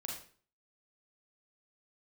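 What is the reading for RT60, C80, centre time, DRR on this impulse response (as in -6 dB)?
0.45 s, 8.0 dB, 38 ms, -1.5 dB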